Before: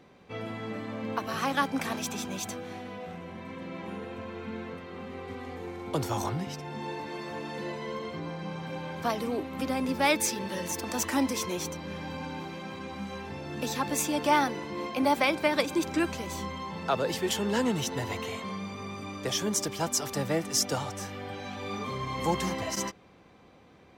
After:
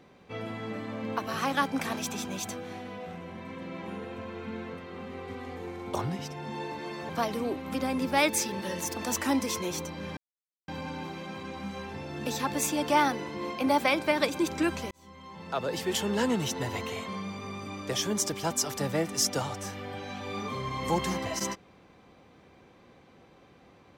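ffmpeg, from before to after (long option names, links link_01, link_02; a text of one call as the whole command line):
ffmpeg -i in.wav -filter_complex "[0:a]asplit=5[link_01][link_02][link_03][link_04][link_05];[link_01]atrim=end=5.952[link_06];[link_02]atrim=start=6.228:end=7.372[link_07];[link_03]atrim=start=8.958:end=12.04,asetpts=PTS-STARTPTS,afade=type=out:start_time=3.078:duration=0.004:curve=hsin,apad=pad_dur=0.51[link_08];[link_04]atrim=start=12.04:end=16.27,asetpts=PTS-STARTPTS,afade=type=in:duration=0.004:curve=hsin,afade=type=out:start_time=4.226:duration=0.004:curve=hsin[link_09];[link_05]atrim=start=16.27,asetpts=PTS-STARTPTS,afade=type=in:duration=1.05[link_10];[link_06][link_07]acrossfade=duration=0.004:curve1=hsin:curve2=hsin[link_11];[link_08][link_09][link_10]concat=n=3:v=0:a=1[link_12];[link_11][link_12]acrossfade=duration=0.004:curve1=hsin:curve2=hsin" out.wav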